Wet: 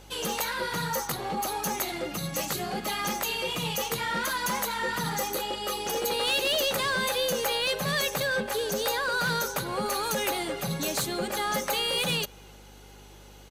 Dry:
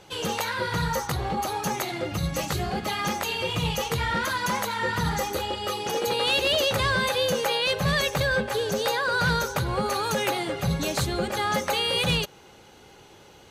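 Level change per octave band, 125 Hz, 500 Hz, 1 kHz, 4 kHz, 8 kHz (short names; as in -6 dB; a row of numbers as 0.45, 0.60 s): -8.5, -3.5, -3.0, -2.0, +1.5 dB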